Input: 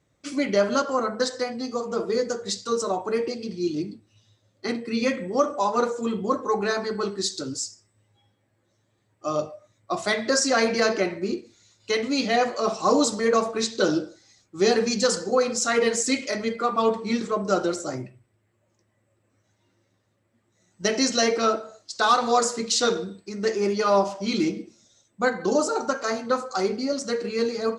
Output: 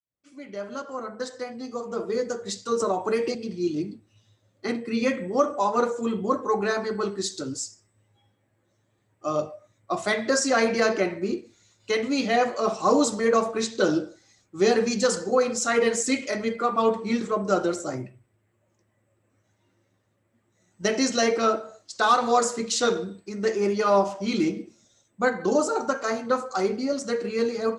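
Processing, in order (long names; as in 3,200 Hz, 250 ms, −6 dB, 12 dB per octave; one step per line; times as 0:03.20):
fade in at the beginning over 2.81 s
parametric band 4,700 Hz −5 dB 0.86 octaves
0:02.80–0:03.35: multiband upward and downward compressor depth 100%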